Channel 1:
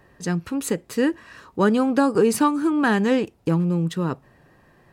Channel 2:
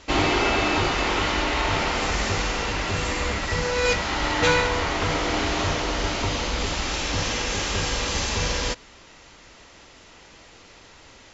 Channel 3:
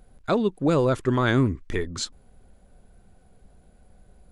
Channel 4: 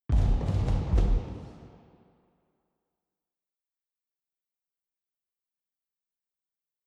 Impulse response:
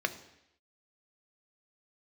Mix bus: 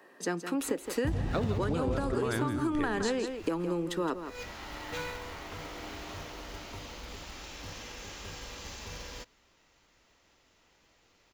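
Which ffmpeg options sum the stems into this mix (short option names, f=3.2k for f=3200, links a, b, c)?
-filter_complex "[0:a]highpass=f=260:w=0.5412,highpass=f=260:w=1.3066,acrossover=split=350|1800[a][b][c];[a]acompressor=threshold=-30dB:ratio=4[d];[b]acompressor=threshold=-25dB:ratio=4[e];[c]acompressor=threshold=-37dB:ratio=4[f];[d][e][f]amix=inputs=3:normalize=0,volume=-0.5dB,asplit=3[g][h][i];[h]volume=-11.5dB[j];[1:a]acrusher=bits=4:mode=log:mix=0:aa=0.000001,adelay=500,volume=-18dB[k];[2:a]adelay=1050,volume=-4.5dB,asplit=2[l][m];[m]volume=-9dB[n];[3:a]highpass=68,adelay=950,volume=3dB[o];[i]apad=whole_len=521970[p];[k][p]sidechaincompress=threshold=-44dB:ratio=8:attack=8.2:release=241[q];[j][n]amix=inputs=2:normalize=0,aecho=0:1:166:1[r];[g][q][l][o][r]amix=inputs=5:normalize=0,acompressor=threshold=-26dB:ratio=12"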